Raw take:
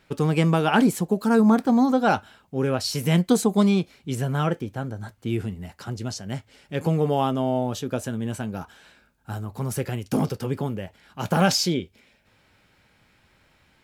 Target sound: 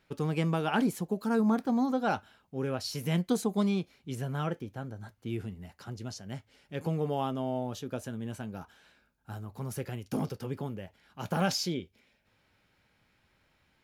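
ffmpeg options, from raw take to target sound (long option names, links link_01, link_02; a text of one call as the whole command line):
ffmpeg -i in.wav -af "equalizer=frequency=8000:width=7.2:gain=-6.5,volume=-9dB" out.wav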